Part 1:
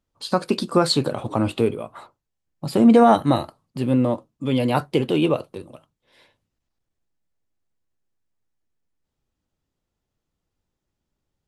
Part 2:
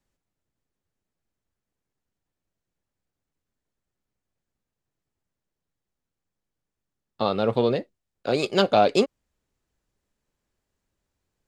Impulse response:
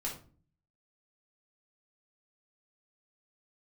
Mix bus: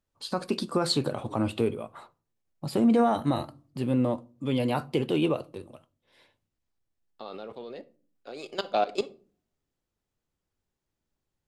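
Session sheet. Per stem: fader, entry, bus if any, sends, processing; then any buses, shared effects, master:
−6.0 dB, 0.00 s, send −19 dB, no processing
−5.0 dB, 0.00 s, send −13.5 dB, high-pass filter 260 Hz 12 dB per octave; output level in coarse steps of 18 dB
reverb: on, RT60 0.40 s, pre-delay 3 ms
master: brickwall limiter −15 dBFS, peak gain reduction 6.5 dB

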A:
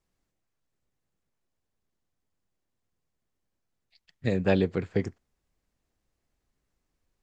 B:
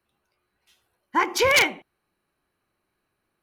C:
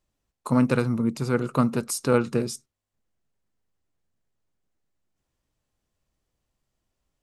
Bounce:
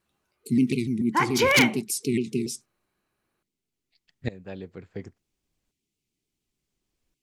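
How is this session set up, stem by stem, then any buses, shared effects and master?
−0.5 dB, 0.00 s, no send, tremolo with a ramp in dB swelling 0.7 Hz, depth 18 dB
−1.5 dB, 0.00 s, no send, no processing
+0.5 dB, 0.00 s, no send, brick-wall band-stop 440–2,000 Hz; high-pass filter 160 Hz 12 dB per octave; pitch modulation by a square or saw wave saw down 6.9 Hz, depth 160 cents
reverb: not used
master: no processing

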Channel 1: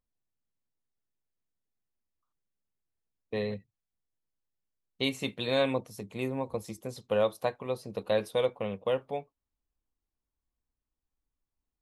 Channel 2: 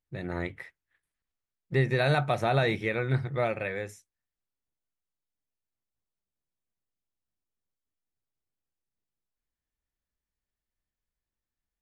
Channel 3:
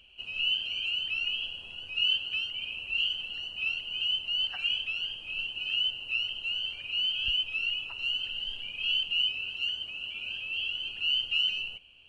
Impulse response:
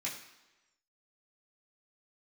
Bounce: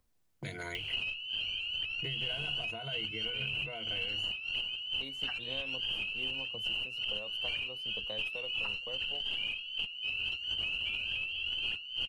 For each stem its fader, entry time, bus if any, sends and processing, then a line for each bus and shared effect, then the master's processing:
−18.5 dB, 0.00 s, bus A, no send, no processing
−15.5 dB, 0.30 s, bus A, no send, noise gate −48 dBFS, range −18 dB; EQ curve with evenly spaced ripples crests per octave 1.8, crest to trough 16 dB
+1.0 dB, 0.75 s, no bus, no send, compressor whose output falls as the input rises −41 dBFS, ratio −1
bus A: 0.0 dB, downward compressor 4 to 1, threshold −42 dBFS, peak gain reduction 10 dB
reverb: not used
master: multiband upward and downward compressor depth 100%

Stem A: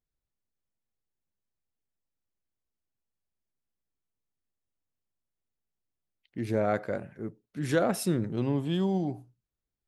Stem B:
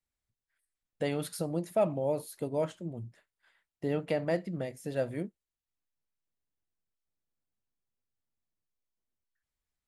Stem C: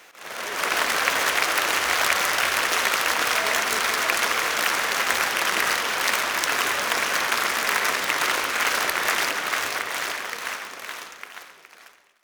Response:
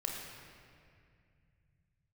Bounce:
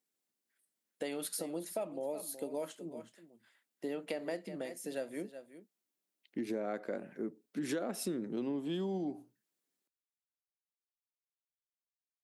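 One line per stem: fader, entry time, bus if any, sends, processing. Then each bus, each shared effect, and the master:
+2.0 dB, 0.00 s, no send, no echo send, low-shelf EQ 430 Hz +6.5 dB
−0.5 dB, 0.00 s, no send, echo send −15 dB, high-shelf EQ 6,100 Hz +7 dB
muted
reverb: not used
echo: single-tap delay 371 ms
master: high-pass filter 240 Hz 24 dB per octave; parametric band 860 Hz −3.5 dB 2.7 octaves; downward compressor 6 to 1, threshold −34 dBFS, peak gain reduction 15 dB

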